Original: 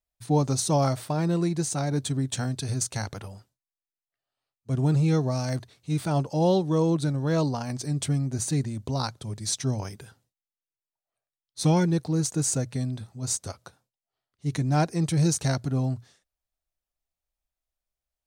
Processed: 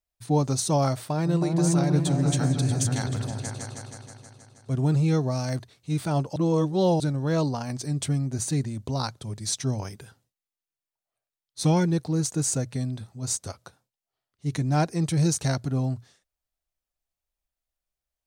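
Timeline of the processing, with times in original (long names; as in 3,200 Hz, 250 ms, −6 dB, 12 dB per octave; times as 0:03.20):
0:01.04–0:04.73: echo whose low-pass opens from repeat to repeat 159 ms, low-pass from 200 Hz, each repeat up 2 octaves, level 0 dB
0:06.36–0:07.00: reverse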